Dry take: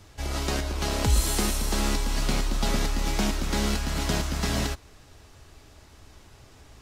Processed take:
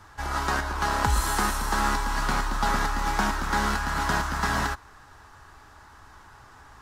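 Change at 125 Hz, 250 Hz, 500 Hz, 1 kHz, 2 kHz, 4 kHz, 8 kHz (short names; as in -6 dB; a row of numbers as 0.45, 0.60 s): -3.0, -3.0, -2.5, +9.5, +7.0, -3.0, -3.0 dB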